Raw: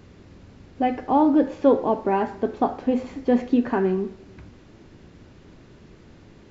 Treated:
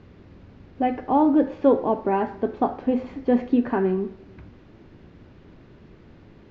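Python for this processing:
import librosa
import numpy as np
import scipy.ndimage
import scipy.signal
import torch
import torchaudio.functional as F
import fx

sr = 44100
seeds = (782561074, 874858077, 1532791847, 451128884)

y = fx.air_absorb(x, sr, metres=180.0)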